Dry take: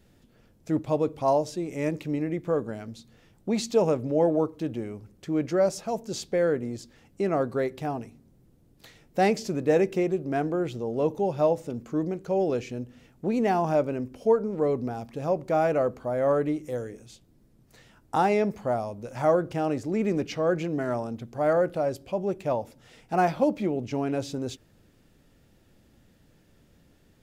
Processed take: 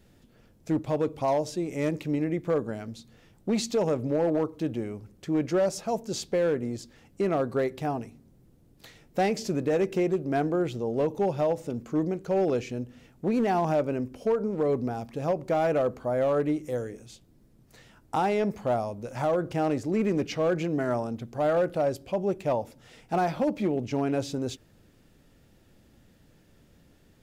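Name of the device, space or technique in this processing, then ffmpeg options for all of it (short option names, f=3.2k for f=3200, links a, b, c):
limiter into clipper: -af "alimiter=limit=-17.5dB:level=0:latency=1:release=109,asoftclip=type=hard:threshold=-20dB,volume=1dB"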